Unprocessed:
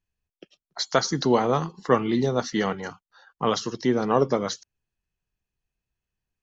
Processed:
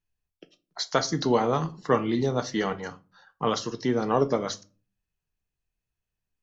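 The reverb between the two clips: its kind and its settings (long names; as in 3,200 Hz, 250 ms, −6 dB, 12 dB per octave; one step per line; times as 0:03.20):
rectangular room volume 180 cubic metres, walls furnished, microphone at 0.44 metres
level −2.5 dB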